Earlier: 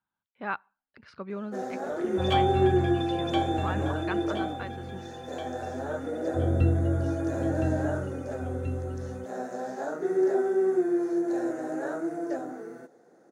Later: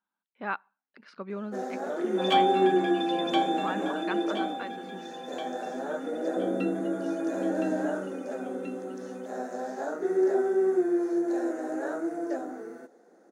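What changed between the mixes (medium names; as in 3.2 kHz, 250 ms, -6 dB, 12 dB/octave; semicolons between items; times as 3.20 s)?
second sound +3.0 dB; master: add brick-wall FIR high-pass 170 Hz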